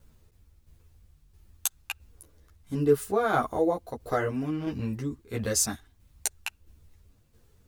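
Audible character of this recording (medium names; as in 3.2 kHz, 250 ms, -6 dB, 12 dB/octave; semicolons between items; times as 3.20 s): a quantiser's noise floor 12-bit, dither none; tremolo saw down 1.5 Hz, depth 50%; a shimmering, thickened sound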